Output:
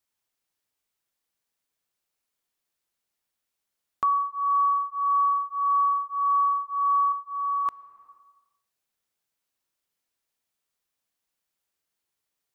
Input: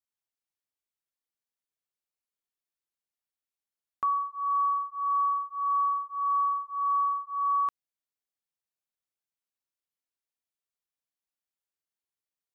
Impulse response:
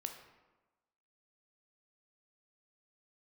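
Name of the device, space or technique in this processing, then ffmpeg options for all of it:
ducked reverb: -filter_complex "[0:a]asettb=1/sr,asplit=3[link_01][link_02][link_03];[link_01]atrim=end=7.124[link_04];[link_02]atrim=start=7.12:end=7.66,asetpts=PTS-STARTPTS,afade=type=in:duration=0.004:curve=qsin,afade=type=out:start_time=0.536:duration=0.004:curve=qsin,equalizer=frequency=930:width_type=o:width=0.49:gain=-12[link_05];[link_03]atrim=start=7.656[link_06];[link_04][link_05]acrossfade=duration=0.004:curve1=hsin:curve2=qsin[link_07];[link_07][link_06]acrossfade=duration=0.004:curve1=qsin:curve2=hsin,asplit=3[link_08][link_09][link_10];[1:a]atrim=start_sample=2205[link_11];[link_09][link_11]afir=irnorm=-1:irlink=0[link_12];[link_10]apad=whole_len=553093[link_13];[link_12][link_13]sidechaincompress=threshold=-49dB:ratio=4:attack=16:release=281,volume=3.5dB[link_14];[link_08][link_14]amix=inputs=2:normalize=0,volume=3dB"

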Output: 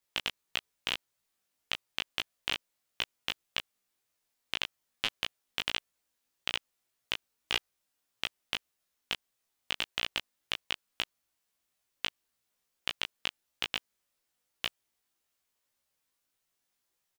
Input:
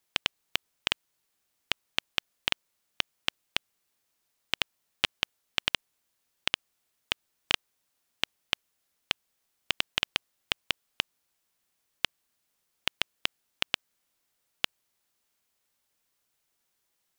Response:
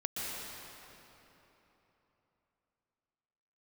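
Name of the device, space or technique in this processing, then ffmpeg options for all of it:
double-tracked vocal: -filter_complex "[0:a]asplit=2[link_01][link_02];[link_02]adelay=16,volume=-3dB[link_03];[link_01][link_03]amix=inputs=2:normalize=0,flanger=delay=17.5:depth=2.7:speed=1.7,volume=-2.5dB"

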